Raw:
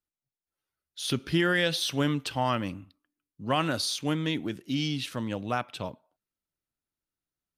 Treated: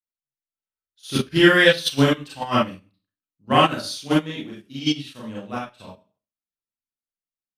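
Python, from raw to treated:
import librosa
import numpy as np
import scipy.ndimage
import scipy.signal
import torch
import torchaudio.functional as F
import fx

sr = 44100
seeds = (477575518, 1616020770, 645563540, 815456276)

p1 = fx.rev_schroeder(x, sr, rt60_s=0.39, comb_ms=29, drr_db=-5.5)
p2 = fx.level_steps(p1, sr, step_db=11)
p3 = p1 + (p2 * librosa.db_to_amplitude(0.5))
p4 = fx.upward_expand(p3, sr, threshold_db=-29.0, expansion=2.5)
y = p4 * librosa.db_to_amplitude(3.0)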